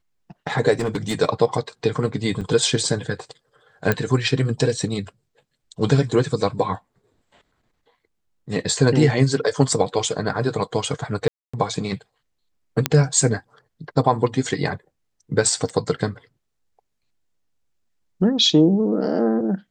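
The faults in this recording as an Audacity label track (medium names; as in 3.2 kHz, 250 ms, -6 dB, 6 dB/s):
0.790000	1.150000	clipped -18.5 dBFS
2.410000	2.410000	dropout 3.8 ms
3.920000	3.920000	pop -6 dBFS
11.280000	11.540000	dropout 255 ms
12.860000	12.860000	pop -1 dBFS
15.690000	15.700000	dropout 5.1 ms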